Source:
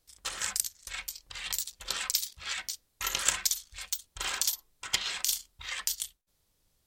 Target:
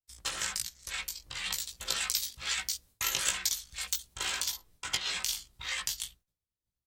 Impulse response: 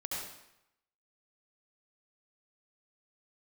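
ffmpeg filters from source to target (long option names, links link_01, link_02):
-filter_complex "[0:a]agate=range=-33dB:threshold=-56dB:ratio=3:detection=peak,equalizer=frequency=91:width=0.47:gain=8.5,asplit=2[link_01][link_02];[link_02]adelay=17,volume=-3dB[link_03];[link_01][link_03]amix=inputs=2:normalize=0,acrossover=split=170|2100|4800[link_04][link_05][link_06][link_07];[link_04]acompressor=threshold=-54dB:ratio=4[link_08];[link_05]acompressor=threshold=-41dB:ratio=4[link_09];[link_06]acompressor=threshold=-34dB:ratio=4[link_10];[link_07]acompressor=threshold=-37dB:ratio=4[link_11];[link_08][link_09][link_10][link_11]amix=inputs=4:normalize=0,asettb=1/sr,asplit=3[link_12][link_13][link_14];[link_12]atrim=end=1.714[link_15];[link_13]atrim=start=1.71:end=4.14,asetpts=PTS-STARTPTS,afade=type=in:duration=0.004:curve=qsin,afade=type=out:start_time=2.426:duration=0.004:curve=qsin,highshelf=frequency=6500:gain=5.5[link_16];[link_14]atrim=start=4.136[link_17];[link_15][link_16]acrossfade=duration=0.004:curve1=hsin:curve2=qsin[link_18];[link_18][link_17]acrossfade=duration=0.004:curve1=qsin:curve2=hsin,acontrast=83,volume=-6dB"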